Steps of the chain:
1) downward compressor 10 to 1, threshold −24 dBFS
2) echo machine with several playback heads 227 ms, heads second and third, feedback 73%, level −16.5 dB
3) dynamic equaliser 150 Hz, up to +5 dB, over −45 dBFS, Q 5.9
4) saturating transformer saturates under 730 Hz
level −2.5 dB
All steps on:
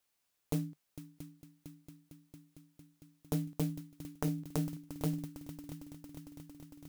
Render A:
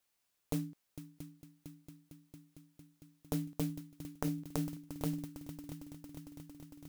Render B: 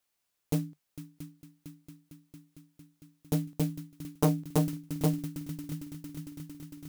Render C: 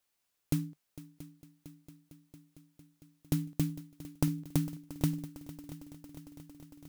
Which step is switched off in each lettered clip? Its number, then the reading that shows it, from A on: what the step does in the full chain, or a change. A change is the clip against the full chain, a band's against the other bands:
3, 125 Hz band −3.0 dB
1, average gain reduction 4.0 dB
4, 500 Hz band −6.0 dB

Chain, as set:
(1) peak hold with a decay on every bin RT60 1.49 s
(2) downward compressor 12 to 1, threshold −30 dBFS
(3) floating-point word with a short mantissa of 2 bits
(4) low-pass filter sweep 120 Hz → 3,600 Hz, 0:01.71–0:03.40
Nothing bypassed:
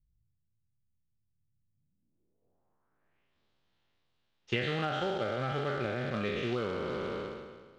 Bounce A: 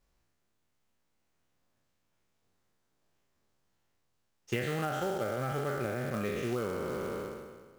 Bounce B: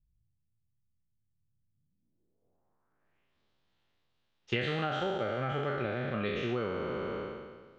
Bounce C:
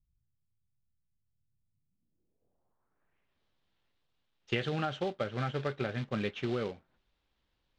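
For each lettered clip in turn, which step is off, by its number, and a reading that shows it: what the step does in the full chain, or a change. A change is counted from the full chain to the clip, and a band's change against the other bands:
4, 4 kHz band −6.0 dB
3, distortion level −20 dB
1, 125 Hz band +3.0 dB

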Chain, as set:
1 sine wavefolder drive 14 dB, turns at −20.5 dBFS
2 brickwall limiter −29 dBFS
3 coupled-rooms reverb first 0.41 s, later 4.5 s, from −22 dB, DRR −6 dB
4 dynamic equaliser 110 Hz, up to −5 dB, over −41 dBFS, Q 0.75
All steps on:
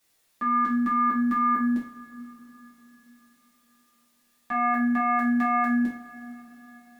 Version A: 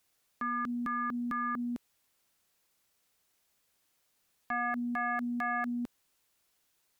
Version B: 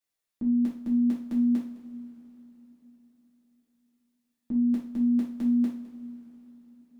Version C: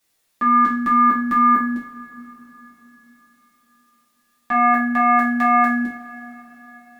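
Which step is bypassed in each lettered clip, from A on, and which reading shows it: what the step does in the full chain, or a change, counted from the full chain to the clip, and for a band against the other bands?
3, change in momentary loudness spread −13 LU
1, change in momentary loudness spread −2 LU
2, average gain reduction 5.0 dB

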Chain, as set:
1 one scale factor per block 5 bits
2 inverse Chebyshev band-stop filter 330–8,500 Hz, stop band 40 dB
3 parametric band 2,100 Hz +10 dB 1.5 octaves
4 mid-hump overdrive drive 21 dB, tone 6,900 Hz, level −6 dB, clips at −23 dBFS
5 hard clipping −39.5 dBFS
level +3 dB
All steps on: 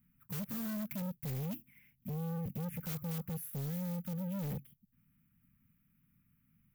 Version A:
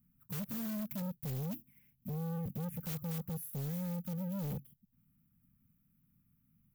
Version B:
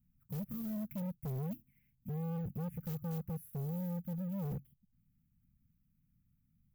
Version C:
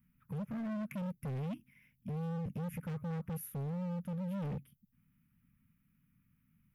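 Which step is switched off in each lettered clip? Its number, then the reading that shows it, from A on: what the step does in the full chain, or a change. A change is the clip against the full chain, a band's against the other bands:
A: 3, 2 kHz band −2.5 dB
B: 4, 8 kHz band −10.5 dB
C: 1, distortion level −23 dB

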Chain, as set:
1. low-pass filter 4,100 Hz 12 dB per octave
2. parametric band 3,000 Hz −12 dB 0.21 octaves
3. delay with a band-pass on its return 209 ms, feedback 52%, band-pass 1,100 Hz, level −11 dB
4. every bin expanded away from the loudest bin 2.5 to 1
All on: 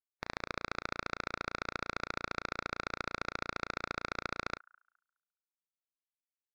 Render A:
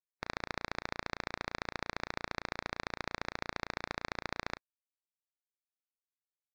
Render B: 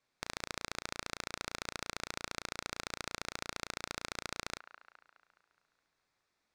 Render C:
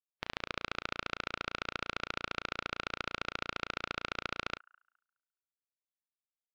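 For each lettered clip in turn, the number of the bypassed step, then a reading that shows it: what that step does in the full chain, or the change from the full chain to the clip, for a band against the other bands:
3, 1 kHz band −2.0 dB
4, 8 kHz band +14.5 dB
2, 4 kHz band +5.5 dB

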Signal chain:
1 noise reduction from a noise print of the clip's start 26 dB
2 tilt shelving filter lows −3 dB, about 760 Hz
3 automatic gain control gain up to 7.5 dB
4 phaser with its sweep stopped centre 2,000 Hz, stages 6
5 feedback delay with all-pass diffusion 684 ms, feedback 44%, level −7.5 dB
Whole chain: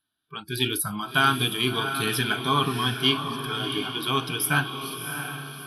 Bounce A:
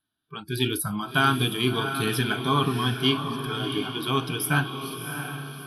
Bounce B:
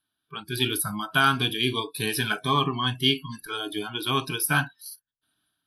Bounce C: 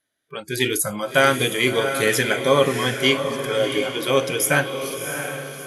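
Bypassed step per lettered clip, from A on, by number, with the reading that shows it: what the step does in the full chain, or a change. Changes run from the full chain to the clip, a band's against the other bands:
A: 2, 125 Hz band +4.5 dB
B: 5, echo-to-direct ratio −6.5 dB to none audible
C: 4, 500 Hz band +10.5 dB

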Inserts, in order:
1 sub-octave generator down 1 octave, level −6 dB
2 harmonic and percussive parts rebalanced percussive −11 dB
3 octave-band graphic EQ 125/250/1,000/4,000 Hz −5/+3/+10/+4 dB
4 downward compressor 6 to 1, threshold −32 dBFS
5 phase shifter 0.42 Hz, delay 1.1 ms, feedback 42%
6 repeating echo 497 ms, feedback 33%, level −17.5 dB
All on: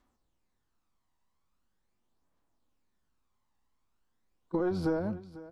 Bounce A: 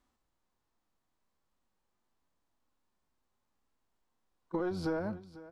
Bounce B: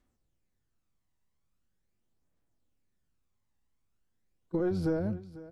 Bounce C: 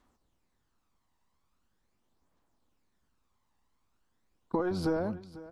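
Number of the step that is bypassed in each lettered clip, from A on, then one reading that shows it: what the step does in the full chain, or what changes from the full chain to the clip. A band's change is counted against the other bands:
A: 5, 4 kHz band +4.5 dB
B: 3, change in crest factor −1.5 dB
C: 2, 4 kHz band +4.5 dB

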